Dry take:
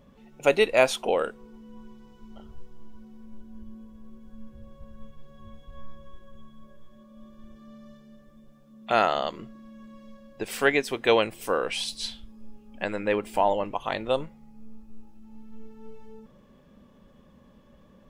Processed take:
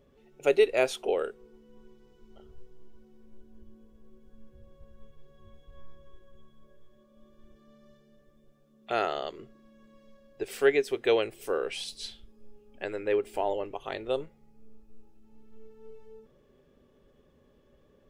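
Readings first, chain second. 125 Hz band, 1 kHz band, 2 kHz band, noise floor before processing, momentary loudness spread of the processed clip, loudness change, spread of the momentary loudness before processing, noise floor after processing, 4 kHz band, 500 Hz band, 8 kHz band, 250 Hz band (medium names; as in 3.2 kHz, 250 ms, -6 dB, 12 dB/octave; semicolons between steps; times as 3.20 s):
-8.0 dB, -8.5 dB, -6.5 dB, -56 dBFS, 14 LU, -3.5 dB, 13 LU, -63 dBFS, -6.5 dB, -2.0 dB, -6.5 dB, -5.5 dB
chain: graphic EQ with 31 bands 200 Hz -11 dB, 400 Hz +11 dB, 1 kHz -7 dB; trim -6.5 dB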